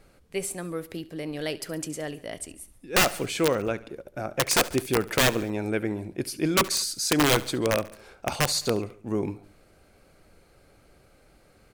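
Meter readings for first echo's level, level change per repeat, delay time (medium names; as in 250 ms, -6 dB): -19.0 dB, -4.5 dB, 70 ms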